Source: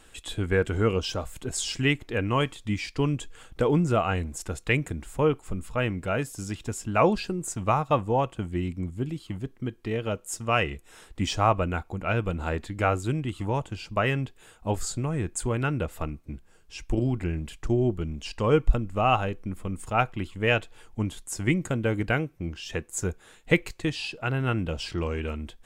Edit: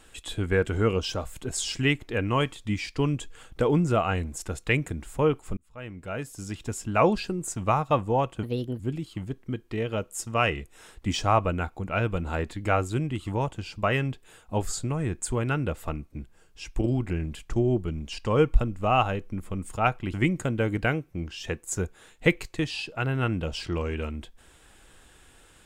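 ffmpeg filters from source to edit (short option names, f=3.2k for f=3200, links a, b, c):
-filter_complex "[0:a]asplit=5[a][b][c][d][e];[a]atrim=end=5.57,asetpts=PTS-STARTPTS,afade=t=out:st=5.566:d=0.004:c=hsin[f];[b]atrim=start=5.57:end=8.434,asetpts=PTS-STARTPTS,afade=t=in:d=1.15[g];[c]atrim=start=8.43:end=8.93,asetpts=PTS-STARTPTS,asetrate=60417,aresample=44100[h];[d]atrim=start=8.926:end=20.272[i];[e]atrim=start=21.388[j];[f][g]concat=n=2:v=0:a=1[k];[k][h]acrossfade=d=0.004:c1=hsin:c2=hsin[l];[l][i]acrossfade=d=0.004:c1=hsin:c2=hsin[m];[m][j]acrossfade=d=0.004:c1=hsin:c2=hsin"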